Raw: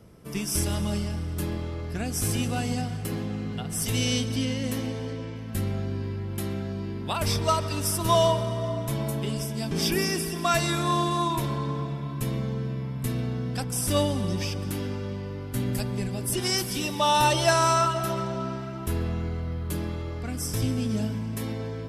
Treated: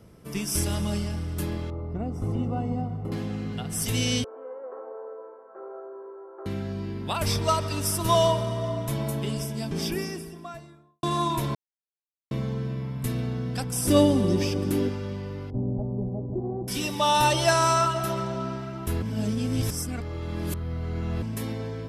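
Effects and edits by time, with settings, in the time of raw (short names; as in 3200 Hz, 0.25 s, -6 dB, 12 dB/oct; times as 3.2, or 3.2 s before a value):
1.7–3.12 polynomial smoothing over 65 samples
4.24–6.46 Chebyshev band-pass 390–1400 Hz, order 4
9.27–11.03 studio fade out
11.55–12.31 mute
13.85–14.89 bell 340 Hz +10.5 dB 1.4 oct
15.5–16.68 steep low-pass 810 Hz
19.02–21.22 reverse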